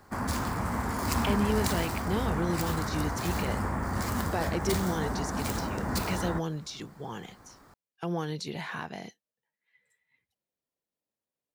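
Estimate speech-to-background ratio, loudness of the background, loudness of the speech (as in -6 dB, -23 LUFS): -3.0 dB, -31.5 LUFS, -34.5 LUFS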